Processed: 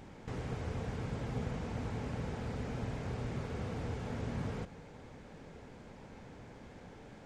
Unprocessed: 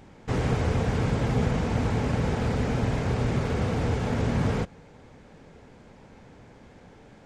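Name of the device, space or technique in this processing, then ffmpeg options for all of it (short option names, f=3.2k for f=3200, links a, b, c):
de-esser from a sidechain: -filter_complex "[0:a]asplit=2[a][b];[b]highpass=4k,apad=whole_len=320138[c];[a][c]sidechaincompress=threshold=-59dB:ratio=8:attack=3.8:release=25,volume=-1.5dB"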